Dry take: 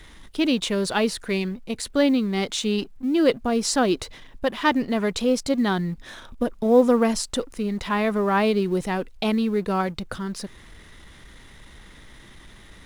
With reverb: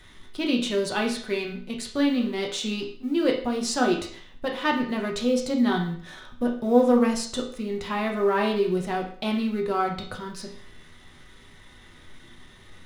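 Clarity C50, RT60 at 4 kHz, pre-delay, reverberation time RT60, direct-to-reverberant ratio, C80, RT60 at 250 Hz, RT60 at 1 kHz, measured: 7.5 dB, 0.50 s, 4 ms, 0.55 s, -0.5 dB, 11.5 dB, 0.50 s, 0.55 s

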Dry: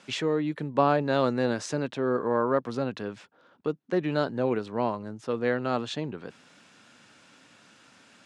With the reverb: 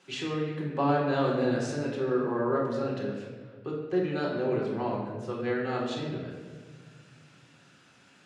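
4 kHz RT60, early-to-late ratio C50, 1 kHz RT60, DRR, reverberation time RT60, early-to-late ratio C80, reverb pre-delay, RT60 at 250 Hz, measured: 1.0 s, 2.0 dB, 1.3 s, -3.5 dB, 1.6 s, 4.0 dB, 3 ms, 2.3 s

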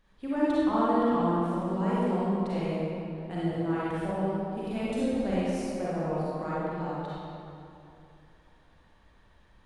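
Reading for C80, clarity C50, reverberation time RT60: -3.5 dB, -7.0 dB, 2.8 s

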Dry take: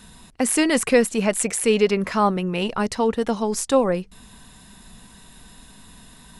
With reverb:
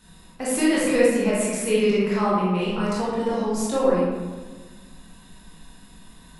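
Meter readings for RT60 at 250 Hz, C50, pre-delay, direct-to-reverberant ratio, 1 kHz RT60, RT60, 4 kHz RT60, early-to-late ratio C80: 1.8 s, -2.0 dB, 18 ms, -8.0 dB, 1.3 s, 1.4 s, 0.75 s, 1.0 dB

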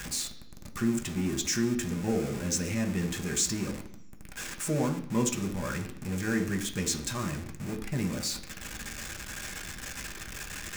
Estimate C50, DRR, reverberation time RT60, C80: 11.5 dB, 2.5 dB, 0.65 s, 14.5 dB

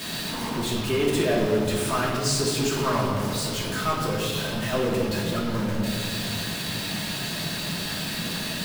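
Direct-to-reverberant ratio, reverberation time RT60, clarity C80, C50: -6.5 dB, 1.8 s, 3.5 dB, 1.5 dB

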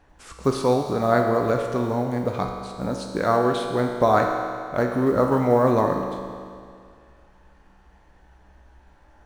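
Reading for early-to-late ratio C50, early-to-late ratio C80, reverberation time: 4.0 dB, 5.0 dB, 2.2 s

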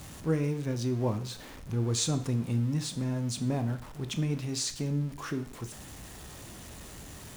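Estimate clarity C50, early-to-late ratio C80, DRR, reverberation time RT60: 13.5 dB, 17.0 dB, 9.0 dB, 0.55 s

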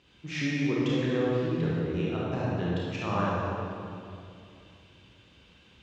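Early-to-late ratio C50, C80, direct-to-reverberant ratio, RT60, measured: -4.0 dB, -1.5 dB, -6.5 dB, 2.6 s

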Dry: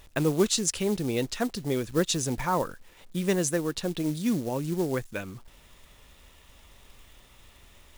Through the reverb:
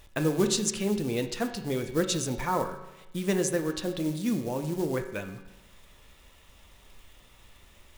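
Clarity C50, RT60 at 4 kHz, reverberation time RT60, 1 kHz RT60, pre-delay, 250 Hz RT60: 9.0 dB, 1.0 s, 1.0 s, 1.0 s, 5 ms, 1.0 s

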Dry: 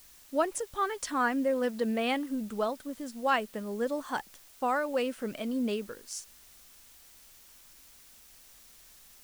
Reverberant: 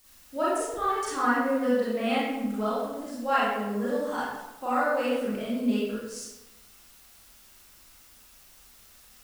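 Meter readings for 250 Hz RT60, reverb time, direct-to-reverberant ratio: 1.1 s, 1.0 s, -9.5 dB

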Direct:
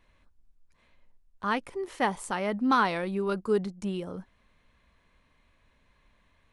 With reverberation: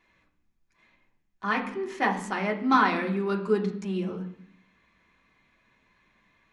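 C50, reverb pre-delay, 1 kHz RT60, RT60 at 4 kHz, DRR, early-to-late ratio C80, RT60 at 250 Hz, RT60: 10.5 dB, 3 ms, 0.65 s, 0.90 s, -0.5 dB, 13.5 dB, 0.90 s, 0.65 s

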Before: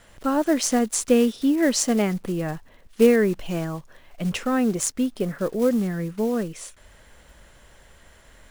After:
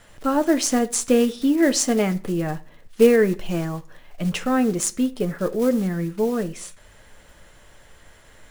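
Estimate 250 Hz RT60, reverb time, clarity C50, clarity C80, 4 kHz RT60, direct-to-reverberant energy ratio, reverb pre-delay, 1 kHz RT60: 0.50 s, 0.40 s, 20.0 dB, 24.5 dB, 0.30 s, 8.5 dB, 7 ms, 0.45 s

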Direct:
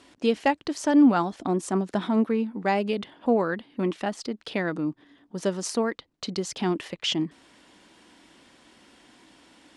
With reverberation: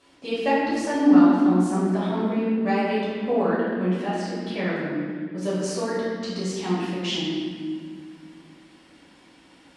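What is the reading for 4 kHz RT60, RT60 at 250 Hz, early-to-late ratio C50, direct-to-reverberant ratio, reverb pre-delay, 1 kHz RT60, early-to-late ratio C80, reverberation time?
1.4 s, 3.1 s, -1.5 dB, -10.0 dB, 5 ms, 1.7 s, 0.5 dB, 1.9 s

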